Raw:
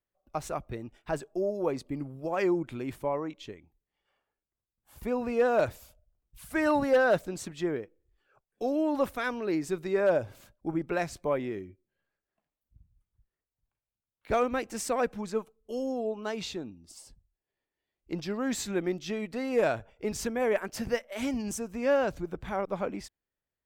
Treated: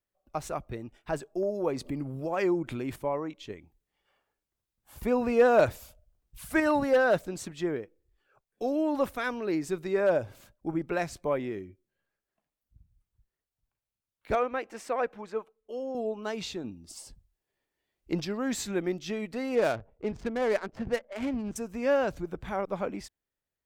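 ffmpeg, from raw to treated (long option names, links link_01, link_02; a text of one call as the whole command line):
ffmpeg -i in.wav -filter_complex "[0:a]asettb=1/sr,asplit=3[link_01][link_02][link_03];[link_01]atrim=end=1.434[link_04];[link_02]atrim=start=1.43:end=2.96,asetpts=PTS-STARTPTS,afade=type=in:duration=0.004:curve=qsin,afade=type=out:start_time=1.526:duration=0.004:curve=qsin,acompressor=mode=upward:threshold=-28dB:ratio=2.5:attack=3.2:release=140:knee=2.83:detection=peak[link_05];[link_03]atrim=start=2.956[link_06];[link_04][link_05]acrossfade=duration=0.004:curve1=hsin:curve2=qsin[link_07];[link_07][link_06]acrossfade=duration=0.004:curve1=qsin:curve2=hsin,asettb=1/sr,asplit=3[link_08][link_09][link_10];[link_08]atrim=end=14.354[link_11];[link_09]atrim=start=14.35:end=15.95,asetpts=PTS-STARTPTS,afade=type=in:duration=0.004:curve=qsin,afade=type=out:start_time=1.596:duration=0.004:curve=qsin,bass=frequency=250:gain=-15,treble=frequency=4000:gain=-14[link_12];[link_10]atrim=start=15.946[link_13];[link_11][link_12]acrossfade=duration=0.004:curve1=hsin:curve2=qsin[link_14];[link_14][link_13]acrossfade=duration=0.004:curve1=qsin:curve2=hsin,asettb=1/sr,asplit=3[link_15][link_16][link_17];[link_15]atrim=end=19.554[link_18];[link_16]atrim=start=19.55:end=21.56,asetpts=PTS-STARTPTS,afade=type=in:duration=0.004:curve=qsin,afade=type=out:start_time=2.006:duration=0.004:curve=qsin,adynamicsmooth=sensitivity=7.5:basefreq=600[link_19];[link_17]atrim=start=21.556[link_20];[link_18][link_19]acrossfade=duration=0.004:curve1=hsin:curve2=qsin[link_21];[link_21][link_20]acrossfade=duration=0.004:curve1=qsin:curve2=hsin,asplit=5[link_22][link_23][link_24][link_25][link_26];[link_22]atrim=end=3.502[link_27];[link_23]atrim=start=3.498:end=6.602,asetpts=PTS-STARTPTS,volume=4dB[link_28];[link_24]atrim=start=6.598:end=16.642[link_29];[link_25]atrim=start=16.638:end=18.252,asetpts=PTS-STARTPTS,volume=4.5dB[link_30];[link_26]atrim=start=18.248[link_31];[link_27][link_28]acrossfade=duration=0.004:curve1=hsin:curve2=hsin[link_32];[link_32][link_29]acrossfade=duration=0.004:curve1=hsin:curve2=hsin[link_33];[link_33][link_30]acrossfade=duration=0.004:curve1=hsin:curve2=hsin[link_34];[link_34][link_31]acrossfade=duration=0.004:curve1=hsin:curve2=hsin" out.wav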